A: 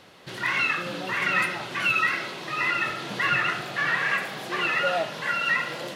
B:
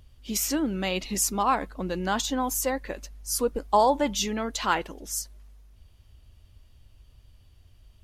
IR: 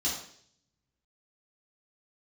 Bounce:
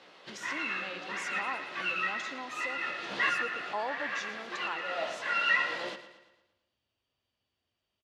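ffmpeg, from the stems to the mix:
-filter_complex "[0:a]flanger=delay=15:depth=2.6:speed=2.5,volume=1.06,asplit=2[s0][s1];[s1]volume=0.224[s2];[1:a]equalizer=f=13000:t=o:w=0.77:g=-6.5,volume=0.211,asplit=3[s3][s4][s5];[s4]volume=0.188[s6];[s5]apad=whole_len=262833[s7];[s0][s7]sidechaincompress=threshold=0.00562:ratio=8:attack=5.6:release=352[s8];[s2][s6]amix=inputs=2:normalize=0,aecho=0:1:115|230|345|460|575|690|805:1|0.49|0.24|0.118|0.0576|0.0282|0.0138[s9];[s8][s3][s9]amix=inputs=3:normalize=0,highpass=210,lowpass=5400,lowshelf=f=300:g=-6.5"

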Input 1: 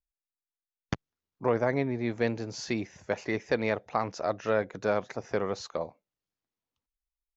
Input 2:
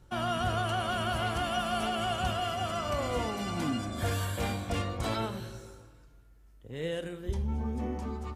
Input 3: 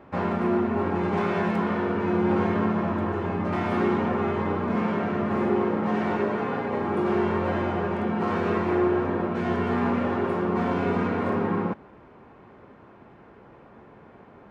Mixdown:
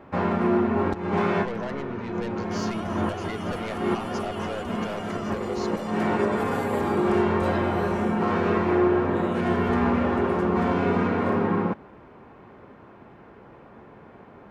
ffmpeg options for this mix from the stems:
-filter_complex "[0:a]equalizer=f=160:t=o:w=1.8:g=-5,asoftclip=type=tanh:threshold=0.0335,lowshelf=f=62:g=11.5,volume=1,asplit=2[s0][s1];[1:a]alimiter=level_in=2.11:limit=0.0631:level=0:latency=1:release=238,volume=0.473,adelay=2400,volume=1.06[s2];[2:a]volume=1.26[s3];[s1]apad=whole_len=639638[s4];[s3][s4]sidechaincompress=threshold=0.00794:ratio=8:attack=5.5:release=232[s5];[s0][s2][s5]amix=inputs=3:normalize=0"

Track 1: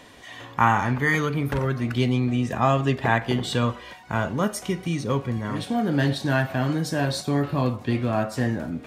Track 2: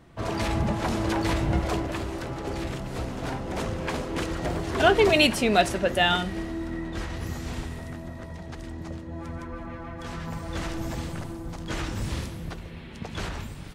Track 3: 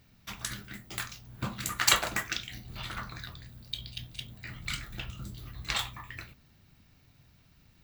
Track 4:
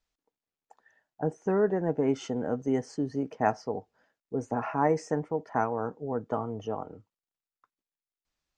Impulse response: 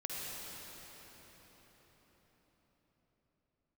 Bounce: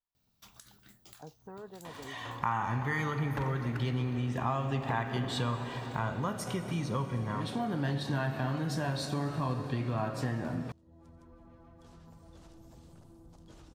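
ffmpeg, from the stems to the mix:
-filter_complex "[0:a]adelay=1850,volume=0.944,asplit=2[s0][s1];[s1]volume=0.422[s2];[1:a]adelay=1800,volume=0.15[s3];[2:a]lowshelf=f=460:g=-8,adelay=150,volume=0.398[s4];[3:a]volume=0.112[s5];[s3][s4]amix=inputs=2:normalize=0,equalizer=f=2000:w=1.2:g=-11.5,acompressor=threshold=0.00355:ratio=6,volume=1[s6];[s0][s5]amix=inputs=2:normalize=0,equalizer=f=125:t=o:w=1:g=8,equalizer=f=1000:t=o:w=1:g=11,equalizer=f=4000:t=o:w=1:g=4,acompressor=threshold=0.0891:ratio=2.5,volume=1[s7];[4:a]atrim=start_sample=2205[s8];[s2][s8]afir=irnorm=-1:irlink=0[s9];[s6][s7][s9]amix=inputs=3:normalize=0,acompressor=threshold=0.00282:ratio=1.5"

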